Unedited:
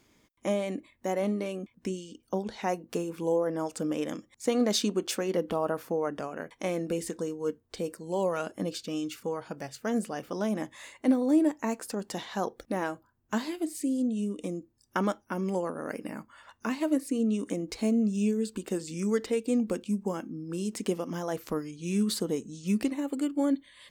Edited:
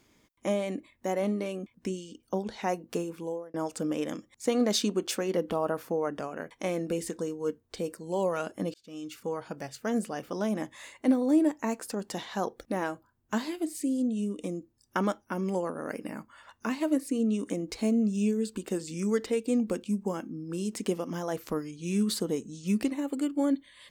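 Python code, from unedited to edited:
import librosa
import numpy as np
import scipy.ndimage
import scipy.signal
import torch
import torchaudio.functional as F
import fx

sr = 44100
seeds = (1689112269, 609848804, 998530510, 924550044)

y = fx.edit(x, sr, fx.fade_out_span(start_s=3.0, length_s=0.54),
    fx.fade_in_span(start_s=8.74, length_s=0.59), tone=tone)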